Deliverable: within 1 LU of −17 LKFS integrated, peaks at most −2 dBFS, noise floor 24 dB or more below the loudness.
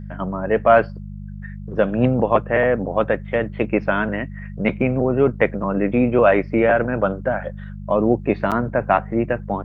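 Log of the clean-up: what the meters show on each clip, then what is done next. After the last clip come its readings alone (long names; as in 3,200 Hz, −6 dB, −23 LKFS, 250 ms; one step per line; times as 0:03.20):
number of dropouts 1; longest dropout 7.5 ms; mains hum 50 Hz; hum harmonics up to 200 Hz; level of the hum −30 dBFS; integrated loudness −19.5 LKFS; sample peak −1.5 dBFS; target loudness −17.0 LKFS
→ repair the gap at 0:08.51, 7.5 ms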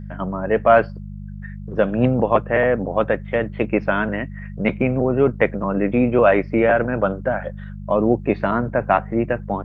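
number of dropouts 0; mains hum 50 Hz; hum harmonics up to 200 Hz; level of the hum −30 dBFS
→ hum removal 50 Hz, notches 4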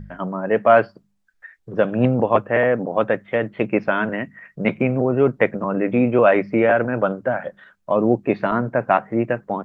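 mains hum none found; integrated loudness −20.0 LKFS; sample peak −1.5 dBFS; target loudness −17.0 LKFS
→ level +3 dB
brickwall limiter −2 dBFS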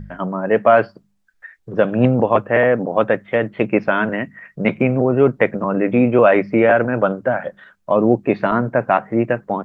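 integrated loudness −17.5 LKFS; sample peak −2.0 dBFS; background noise floor −63 dBFS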